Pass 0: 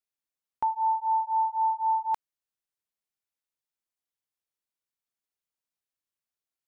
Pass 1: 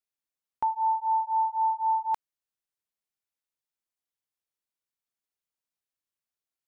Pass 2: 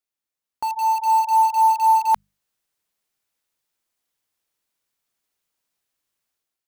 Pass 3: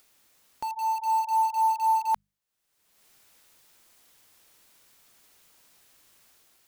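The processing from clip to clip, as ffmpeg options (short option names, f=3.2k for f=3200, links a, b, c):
-af anull
-filter_complex "[0:a]bandreject=f=50:t=h:w=6,bandreject=f=100:t=h:w=6,bandreject=f=150:t=h:w=6,bandreject=f=200:t=h:w=6,dynaudnorm=f=630:g=3:m=10dB,asplit=2[a][b];[b]aeval=exprs='(mod(14.1*val(0)+1,2)-1)/14.1':c=same,volume=-10dB[c];[a][c]amix=inputs=2:normalize=0"
-af "acompressor=mode=upward:threshold=-31dB:ratio=2.5,volume=-7.5dB"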